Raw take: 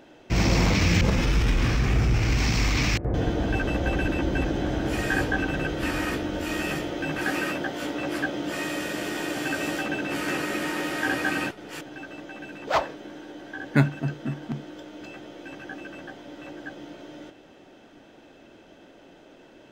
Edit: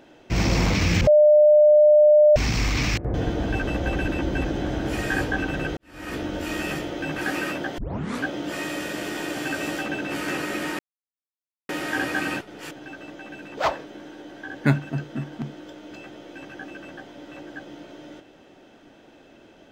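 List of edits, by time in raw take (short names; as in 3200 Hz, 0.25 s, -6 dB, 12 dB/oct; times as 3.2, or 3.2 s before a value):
1.07–2.36 bleep 601 Hz -10.5 dBFS
5.77–6.2 fade in quadratic
7.78 tape start 0.47 s
10.79 insert silence 0.90 s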